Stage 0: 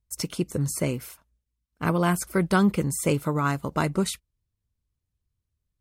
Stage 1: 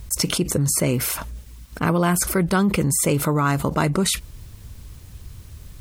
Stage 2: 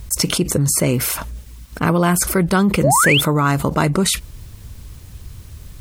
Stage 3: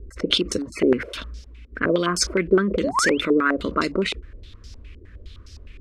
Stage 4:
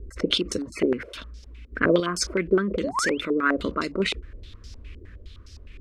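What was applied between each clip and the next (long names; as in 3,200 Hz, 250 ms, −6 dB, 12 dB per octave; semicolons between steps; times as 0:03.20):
envelope flattener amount 70%
sound drawn into the spectrogram rise, 0:02.83–0:03.21, 490–3,700 Hz −19 dBFS; level +3.5 dB
phaser with its sweep stopped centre 340 Hz, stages 4; low-pass on a step sequencer 9.7 Hz 400–5,200 Hz; level −3 dB
sample-and-hold tremolo 3.5 Hz; level +1 dB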